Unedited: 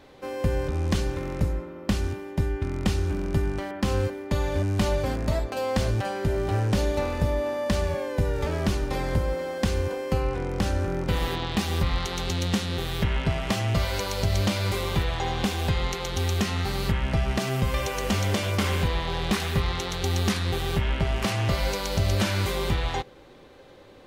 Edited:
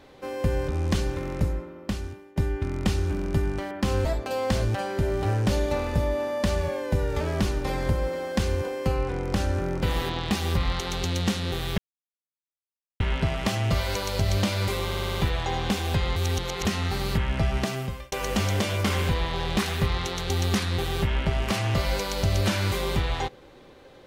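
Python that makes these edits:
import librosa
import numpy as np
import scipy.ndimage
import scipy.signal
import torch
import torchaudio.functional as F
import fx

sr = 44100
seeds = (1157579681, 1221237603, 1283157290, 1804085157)

y = fx.edit(x, sr, fx.fade_out_to(start_s=1.47, length_s=0.89, floor_db=-15.5),
    fx.cut(start_s=4.05, length_s=1.26),
    fx.insert_silence(at_s=13.04, length_s=1.22),
    fx.stutter(start_s=14.89, slice_s=0.06, count=6),
    fx.reverse_span(start_s=15.9, length_s=0.49),
    fx.fade_out_span(start_s=17.34, length_s=0.52), tone=tone)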